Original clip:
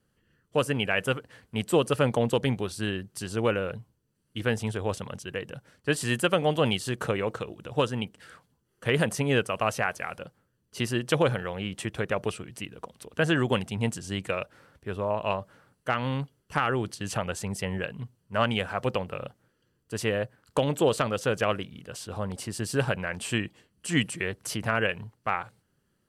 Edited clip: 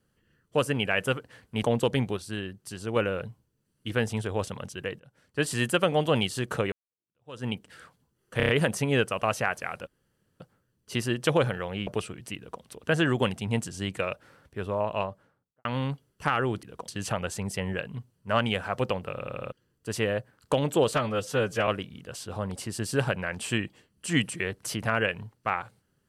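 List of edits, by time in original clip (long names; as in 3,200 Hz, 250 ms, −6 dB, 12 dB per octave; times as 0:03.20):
0:01.63–0:02.13: remove
0:02.67–0:03.46: clip gain −4 dB
0:05.49–0:05.97: fade in, from −22.5 dB
0:07.22–0:07.95: fade in exponential
0:08.87: stutter 0.03 s, 5 plays
0:10.25: splice in room tone 0.53 s
0:11.72–0:12.17: remove
0:12.67–0:12.92: duplicate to 0:16.93
0:15.13–0:15.95: fade out and dull
0:19.17: stutter in place 0.08 s, 5 plays
0:20.99–0:21.48: time-stretch 1.5×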